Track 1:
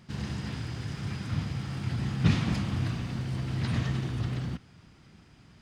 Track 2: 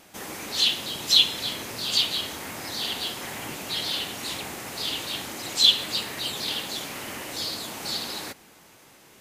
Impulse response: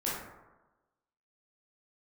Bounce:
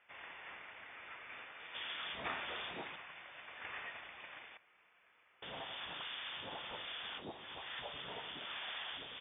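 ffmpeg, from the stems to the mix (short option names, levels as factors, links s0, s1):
-filter_complex "[0:a]highpass=1100,volume=0.708[s0];[1:a]acompressor=threshold=0.0178:ratio=4,aeval=exprs='(tanh(17.8*val(0)+0.1)-tanh(0.1))/17.8':c=same,adelay=1600,volume=0.631,asplit=3[s1][s2][s3];[s1]atrim=end=2.96,asetpts=PTS-STARTPTS,afade=t=out:st=2.956:d=0.004:c=hsin[s4];[s2]atrim=start=2.96:end=5.42,asetpts=PTS-STARTPTS,volume=0[s5];[s3]atrim=start=5.42,asetpts=PTS-STARTPTS,afade=t=in:d=0.004:c=hsin[s6];[s4][s5][s6]concat=n=3:v=0:a=1[s7];[s0][s7]amix=inputs=2:normalize=0,lowpass=f=3100:t=q:w=0.5098,lowpass=f=3100:t=q:w=0.6013,lowpass=f=3100:t=q:w=0.9,lowpass=f=3100:t=q:w=2.563,afreqshift=-3700,highpass=48"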